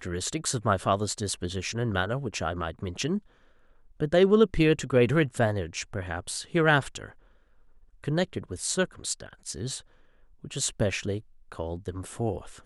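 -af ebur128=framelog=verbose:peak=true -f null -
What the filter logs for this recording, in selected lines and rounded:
Integrated loudness:
  I:         -27.7 LUFS
  Threshold: -38.6 LUFS
Loudness range:
  LRA:         8.0 LU
  Threshold: -48.2 LUFS
  LRA low:   -33.0 LUFS
  LRA high:  -25.0 LUFS
True peak:
  Peak:       -7.6 dBFS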